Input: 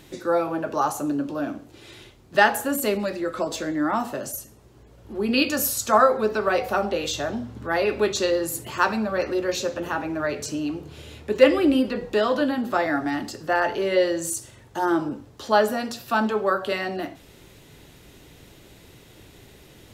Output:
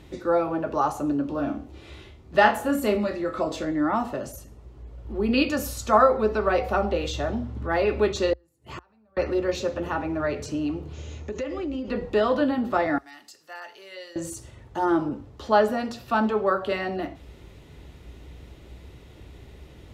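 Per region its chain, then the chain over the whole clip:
1.29–3.65 s: doubling 13 ms -12 dB + flutter echo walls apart 4.9 m, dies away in 0.21 s
8.33–9.17 s: compression 2:1, threshold -33 dBFS + inverted gate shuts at -25 dBFS, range -30 dB
10.93–11.89 s: treble shelf 4.6 kHz -7.5 dB + compression, threshold -28 dBFS + resonant low-pass 6.5 kHz, resonance Q 14
12.98–14.16 s: differentiator + band-stop 3.3 kHz, Q 29 + tape noise reduction on one side only decoder only
whole clip: low-pass 2.5 kHz 6 dB/octave; peaking EQ 62 Hz +15 dB 0.68 oct; band-stop 1.6 kHz, Q 13

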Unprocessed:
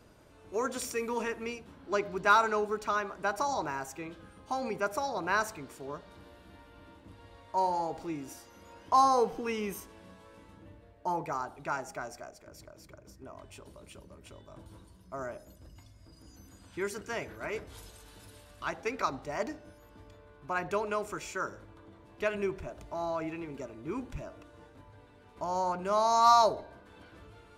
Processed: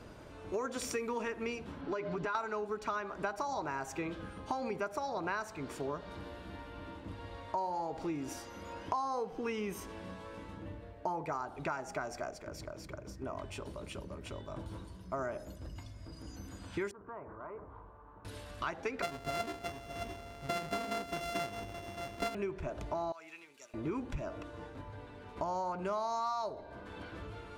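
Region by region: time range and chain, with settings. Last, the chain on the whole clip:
1.81–2.35 s: comb 6.9 ms, depth 58% + compression 3:1, threshold -36 dBFS + distance through air 59 m
16.91–18.25 s: four-pole ladder low-pass 1.2 kHz, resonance 65% + compression 3:1, threshold -51 dBFS
19.02–22.35 s: sorted samples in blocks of 64 samples + delay 615 ms -15.5 dB
23.12–23.74 s: differentiator + three bands expanded up and down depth 40%
whole clip: treble shelf 8.1 kHz -12 dB; compression 8:1, threshold -41 dBFS; trim +7.5 dB

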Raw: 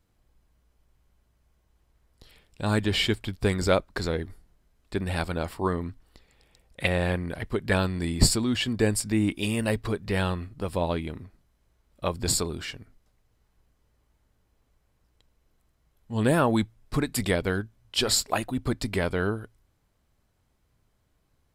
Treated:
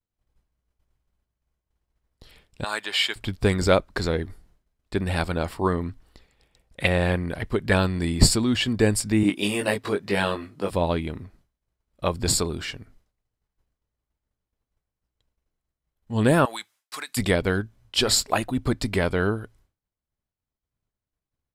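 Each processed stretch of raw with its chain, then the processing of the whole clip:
2.64–3.16 s: high-pass 890 Hz + band-stop 5.8 kHz, Q 11
9.23–10.71 s: high-pass 220 Hz + doubling 20 ms -3 dB
16.45–17.17 s: high-pass 1.1 kHz + treble shelf 4 kHz +8.5 dB + compression 3:1, threshold -33 dBFS
whole clip: expander -55 dBFS; treble shelf 12 kHz -5 dB; trim +3.5 dB

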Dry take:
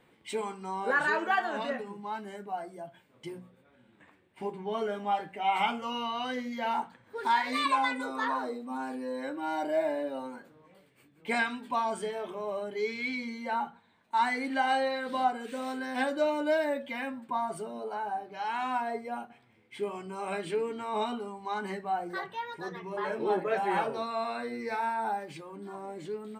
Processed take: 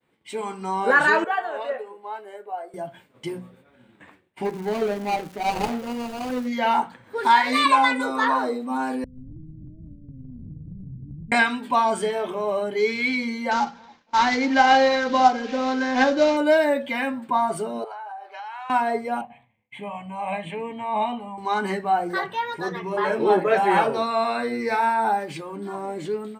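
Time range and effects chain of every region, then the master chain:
1.24–2.74 s: ladder high-pass 410 Hz, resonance 50% + peaking EQ 5.7 kHz -9.5 dB 0.74 oct
4.44–6.46 s: median filter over 41 samples + crackle 530 per s -48 dBFS
9.04–11.32 s: one-bit delta coder 16 kbps, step -27 dBFS + inverse Chebyshev low-pass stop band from 770 Hz, stop band 70 dB + compression 3:1, threshold -45 dBFS
13.51–16.37 s: CVSD coder 32 kbps + comb 3.8 ms, depth 36% + band-passed feedback delay 278 ms, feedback 64%, band-pass 360 Hz, level -22 dB
17.84–18.70 s: high-pass 640 Hz 24 dB/octave + treble shelf 5.7 kHz -11.5 dB + compression 8:1, threshold -43 dBFS
19.21–21.38 s: low-pass 2.6 kHz 6 dB/octave + static phaser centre 1.4 kHz, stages 6
whole clip: expander -58 dBFS; level rider gain up to 11 dB; trim -1 dB

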